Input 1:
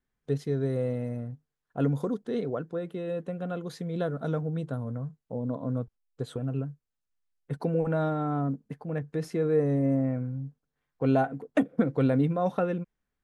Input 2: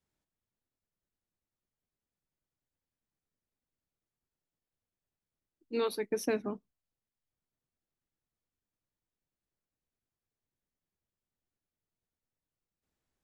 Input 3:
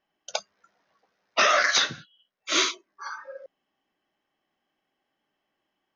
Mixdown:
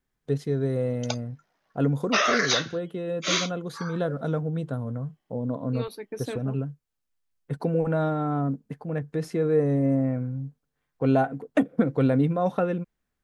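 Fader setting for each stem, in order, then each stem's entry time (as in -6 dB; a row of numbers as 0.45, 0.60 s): +2.5, -3.5, -2.5 dB; 0.00, 0.00, 0.75 s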